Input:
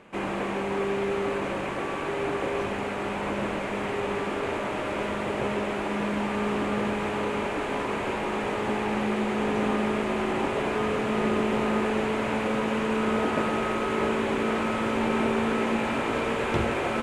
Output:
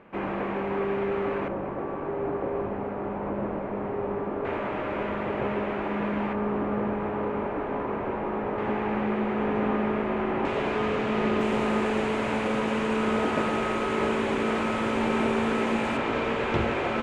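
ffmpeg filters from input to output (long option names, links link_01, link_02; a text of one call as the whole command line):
ffmpeg -i in.wav -af "asetnsamples=nb_out_samples=441:pad=0,asendcmd='1.48 lowpass f 1000;4.45 lowpass f 2200;6.33 lowpass f 1300;8.58 lowpass f 2000;10.45 lowpass f 4900;11.41 lowpass f 9500;15.97 lowpass f 4900',lowpass=2100" out.wav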